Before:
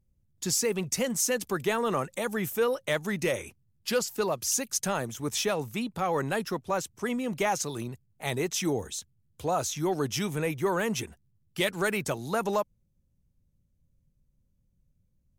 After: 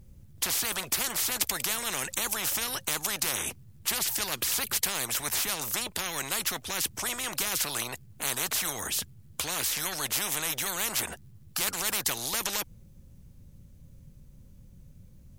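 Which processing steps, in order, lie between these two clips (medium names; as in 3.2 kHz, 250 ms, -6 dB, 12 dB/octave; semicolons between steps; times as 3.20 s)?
spectrum-flattening compressor 10:1; trim +5.5 dB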